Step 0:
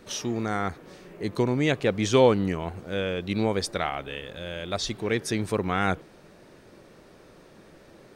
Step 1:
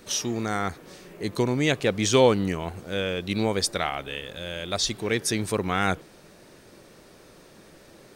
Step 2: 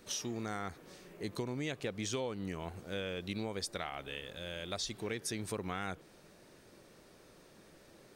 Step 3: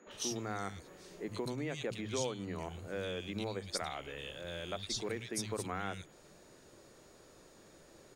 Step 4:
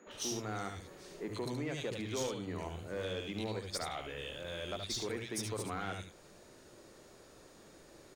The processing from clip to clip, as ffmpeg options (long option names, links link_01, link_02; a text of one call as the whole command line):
ffmpeg -i in.wav -af "highshelf=frequency=3900:gain=9.5" out.wav
ffmpeg -i in.wav -af "acompressor=threshold=-26dB:ratio=6,volume=-8.5dB" out.wav
ffmpeg -i in.wav -filter_complex "[0:a]equalizer=frequency=14000:width=2:gain=-5.5,acrossover=split=190|2400[link_01][link_02][link_03];[link_01]adelay=70[link_04];[link_03]adelay=110[link_05];[link_04][link_02][link_05]amix=inputs=3:normalize=0,aeval=exprs='val(0)+0.000282*sin(2*PI*6800*n/s)':channel_layout=same,volume=1dB" out.wav
ffmpeg -i in.wav -filter_complex "[0:a]asoftclip=type=tanh:threshold=-31dB,asplit=2[link_01][link_02];[link_02]aecho=0:1:73:0.447[link_03];[link_01][link_03]amix=inputs=2:normalize=0,volume=1dB" out.wav